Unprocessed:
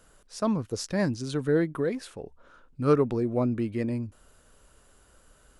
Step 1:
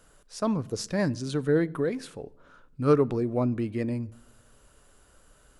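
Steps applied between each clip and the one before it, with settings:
rectangular room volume 2,800 cubic metres, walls furnished, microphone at 0.34 metres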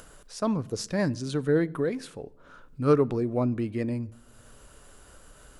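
upward compression, threshold −42 dBFS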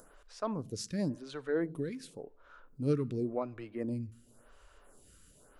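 phaser with staggered stages 0.92 Hz
level −5 dB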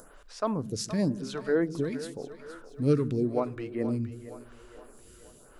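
echo with a time of its own for lows and highs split 340 Hz, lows 150 ms, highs 470 ms, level −13 dB
level +6 dB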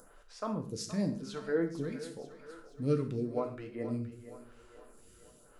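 reverb whose tail is shaped and stops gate 170 ms falling, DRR 4 dB
level −7 dB

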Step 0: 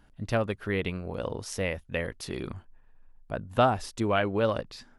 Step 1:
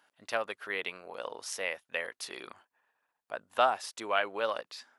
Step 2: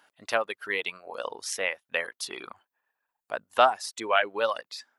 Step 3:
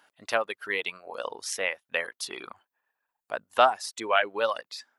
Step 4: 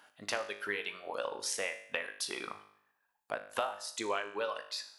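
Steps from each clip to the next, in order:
high-pass filter 720 Hz 12 dB per octave
reverb reduction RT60 1.1 s; level +6 dB
no processing that can be heard
downward compressor 6 to 1, threshold −34 dBFS, peak gain reduction 19 dB; tuned comb filter 51 Hz, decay 0.66 s, harmonics all, mix 70%; level +8.5 dB

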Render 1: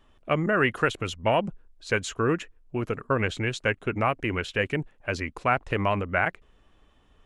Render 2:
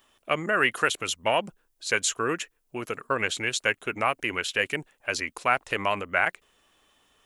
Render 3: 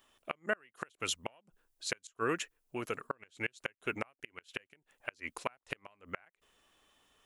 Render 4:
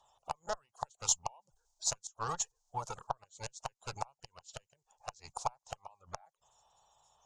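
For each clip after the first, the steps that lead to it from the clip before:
RIAA equalisation recording
gate with flip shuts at −14 dBFS, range −34 dB; level −5 dB
spectral magnitudes quantised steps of 30 dB; harmonic generator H 8 −22 dB, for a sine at −14.5 dBFS; drawn EQ curve 140 Hz 0 dB, 280 Hz −21 dB, 860 Hz +11 dB, 1,500 Hz −11 dB, 2,100 Hz −20 dB, 3,500 Hz −3 dB, 6,700 Hz +12 dB, 11,000 Hz −11 dB

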